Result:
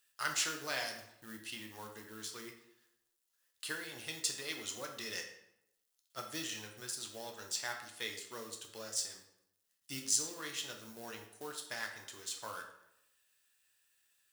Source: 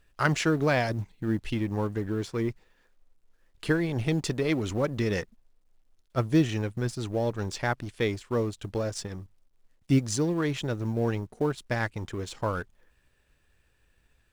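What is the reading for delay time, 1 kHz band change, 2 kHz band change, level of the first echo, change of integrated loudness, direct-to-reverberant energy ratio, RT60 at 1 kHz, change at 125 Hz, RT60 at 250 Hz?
none, -11.5 dB, -8.5 dB, none, -11.0 dB, 2.0 dB, 0.80 s, -29.0 dB, 0.85 s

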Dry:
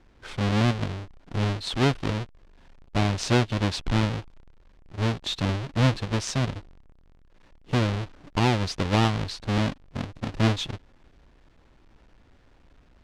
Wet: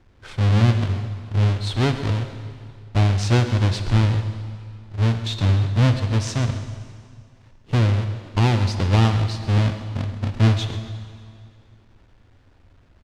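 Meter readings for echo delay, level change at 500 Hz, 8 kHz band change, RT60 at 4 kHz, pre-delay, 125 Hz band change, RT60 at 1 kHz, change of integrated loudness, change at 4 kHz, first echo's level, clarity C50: 0.132 s, +1.0 dB, +1.0 dB, 2.1 s, 5 ms, +8.5 dB, 2.1 s, +5.5 dB, +1.0 dB, -14.0 dB, 8.0 dB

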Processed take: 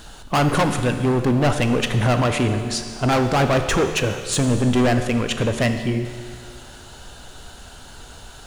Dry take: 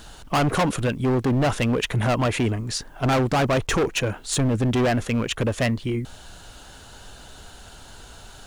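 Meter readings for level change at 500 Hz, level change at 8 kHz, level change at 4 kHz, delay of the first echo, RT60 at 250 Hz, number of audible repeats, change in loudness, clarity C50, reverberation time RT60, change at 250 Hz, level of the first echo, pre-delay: +3.0 dB, +3.0 dB, +3.0 dB, none, 2.2 s, none, +3.0 dB, 7.5 dB, 2.1 s, +3.0 dB, none, 14 ms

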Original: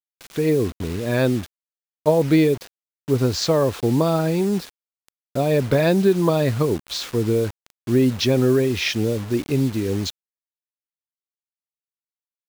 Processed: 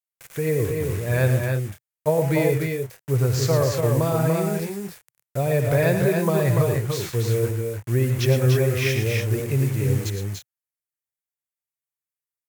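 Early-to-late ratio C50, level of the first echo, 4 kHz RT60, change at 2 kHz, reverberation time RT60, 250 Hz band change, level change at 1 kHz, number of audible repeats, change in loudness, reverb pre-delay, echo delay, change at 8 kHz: none, -17.5 dB, none, +1.0 dB, none, -6.0 dB, -2.0 dB, 4, -1.5 dB, none, 64 ms, +1.0 dB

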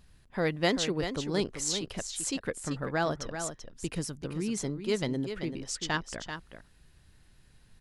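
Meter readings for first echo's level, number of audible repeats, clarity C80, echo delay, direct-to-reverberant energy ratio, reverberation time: -8.5 dB, 1, none, 0.387 s, none, none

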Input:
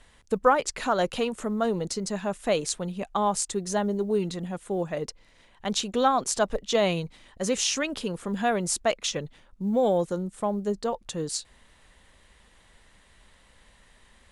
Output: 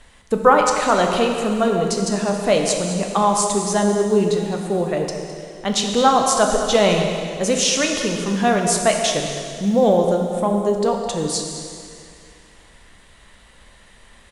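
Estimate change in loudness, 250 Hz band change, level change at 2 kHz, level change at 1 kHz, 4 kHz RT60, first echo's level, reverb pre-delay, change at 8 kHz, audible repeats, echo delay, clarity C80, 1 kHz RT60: +8.5 dB, +9.0 dB, +8.5 dB, +9.0 dB, 2.2 s, -13.0 dB, 5 ms, +8.5 dB, 1, 0.21 s, 4.0 dB, 2.4 s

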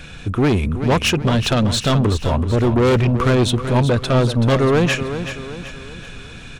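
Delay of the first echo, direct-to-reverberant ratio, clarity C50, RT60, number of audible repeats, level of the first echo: 0.38 s, none, none, none, 4, -10.0 dB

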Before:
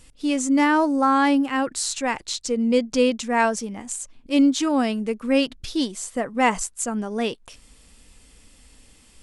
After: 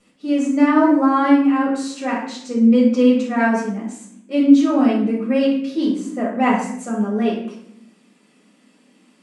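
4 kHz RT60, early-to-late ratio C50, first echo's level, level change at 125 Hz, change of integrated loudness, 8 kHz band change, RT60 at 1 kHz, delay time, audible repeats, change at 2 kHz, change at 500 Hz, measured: 0.50 s, 3.5 dB, none, n/a, +4.5 dB, n/a, 0.60 s, none, none, 0.0 dB, +3.0 dB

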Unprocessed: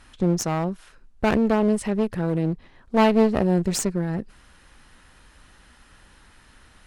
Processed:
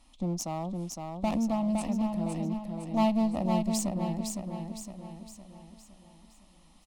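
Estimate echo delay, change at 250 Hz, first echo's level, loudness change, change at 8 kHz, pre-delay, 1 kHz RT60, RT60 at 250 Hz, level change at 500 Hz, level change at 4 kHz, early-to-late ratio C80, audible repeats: 0.511 s, -6.0 dB, -4.5 dB, -8.0 dB, -5.5 dB, none, none, none, -11.0 dB, -7.0 dB, none, 5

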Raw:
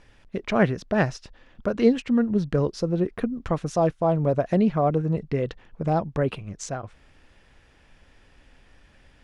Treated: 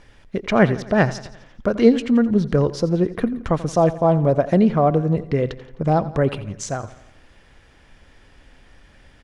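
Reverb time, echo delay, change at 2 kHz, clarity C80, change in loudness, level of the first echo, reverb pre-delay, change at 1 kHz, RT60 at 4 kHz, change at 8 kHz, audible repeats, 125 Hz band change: none, 86 ms, +5.0 dB, none, +5.0 dB, -16.5 dB, none, +5.0 dB, none, +5.0 dB, 4, +5.0 dB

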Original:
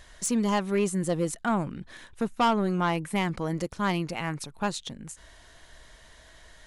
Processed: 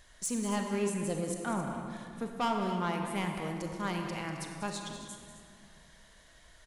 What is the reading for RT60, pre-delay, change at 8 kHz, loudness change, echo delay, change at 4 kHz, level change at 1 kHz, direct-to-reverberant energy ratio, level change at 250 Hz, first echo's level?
2.3 s, 31 ms, -4.0 dB, -6.5 dB, 0.194 s, -6.0 dB, -6.0 dB, 2.0 dB, -6.5 dB, -11.0 dB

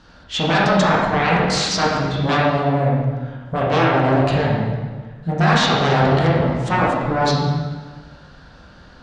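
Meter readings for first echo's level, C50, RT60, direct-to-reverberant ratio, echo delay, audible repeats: none, -1.0 dB, 1.4 s, -6.0 dB, none, none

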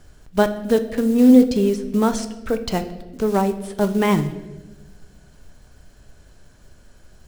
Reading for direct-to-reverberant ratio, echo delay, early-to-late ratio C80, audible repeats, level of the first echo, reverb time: 9.0 dB, none, 14.5 dB, none, none, 1.2 s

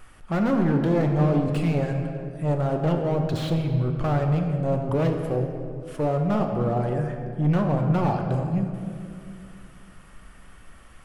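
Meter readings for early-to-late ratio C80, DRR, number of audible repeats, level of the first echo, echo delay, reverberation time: 6.0 dB, 3.0 dB, none, none, none, 2.3 s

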